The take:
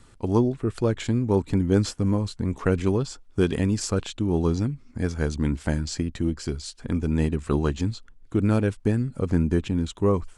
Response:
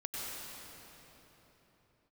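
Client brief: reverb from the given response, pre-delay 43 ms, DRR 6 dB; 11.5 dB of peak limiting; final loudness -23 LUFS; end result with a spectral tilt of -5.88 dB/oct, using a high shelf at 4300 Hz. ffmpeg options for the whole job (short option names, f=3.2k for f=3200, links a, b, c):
-filter_complex "[0:a]highshelf=f=4.3k:g=3.5,alimiter=limit=-18.5dB:level=0:latency=1,asplit=2[a][b];[1:a]atrim=start_sample=2205,adelay=43[c];[b][c]afir=irnorm=-1:irlink=0,volume=-8.5dB[d];[a][d]amix=inputs=2:normalize=0,volume=5.5dB"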